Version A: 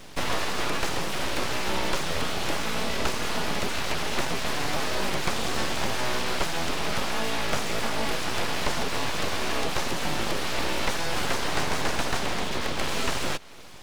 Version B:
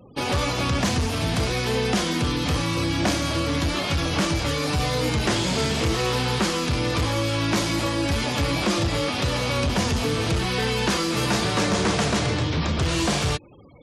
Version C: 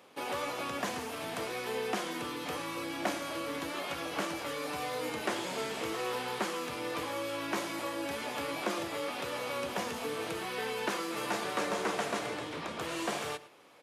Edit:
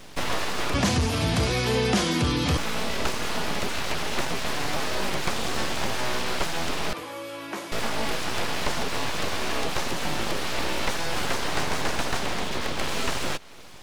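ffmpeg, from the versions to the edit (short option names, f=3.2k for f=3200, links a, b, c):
-filter_complex "[0:a]asplit=3[a][b][c];[a]atrim=end=0.742[d];[1:a]atrim=start=0.738:end=2.572[e];[b]atrim=start=2.568:end=6.932[f];[2:a]atrim=start=6.928:end=7.722[g];[c]atrim=start=7.718[h];[d][e]acrossfade=d=0.004:c1=hsin:c2=hsin[i];[i][f]acrossfade=d=0.004:c1=hsin:c2=hsin[j];[j][g]acrossfade=d=0.004:c1=hsin:c2=hsin[k];[k][h]acrossfade=d=0.004:c1=hsin:c2=hsin"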